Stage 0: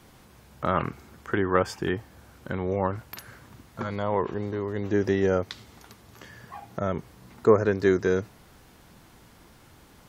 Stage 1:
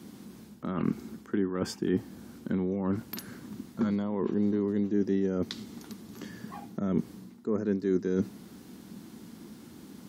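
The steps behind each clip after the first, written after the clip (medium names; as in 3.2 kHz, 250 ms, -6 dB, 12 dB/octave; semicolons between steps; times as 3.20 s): high-pass 93 Hz; reverse; compression 12:1, threshold -31 dBFS, peak gain reduction 19 dB; reverse; FFT filter 130 Hz 0 dB, 210 Hz +15 dB, 340 Hz +9 dB, 580 Hz -3 dB, 2.5 kHz -3 dB, 4.2 kHz +2 dB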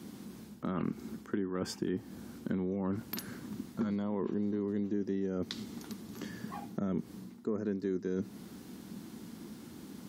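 compression 5:1, threshold -30 dBFS, peak gain reduction 8.5 dB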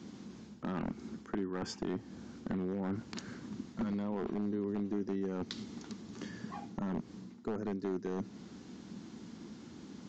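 one-sided wavefolder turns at -27.5 dBFS; resampled via 16 kHz; trim -1.5 dB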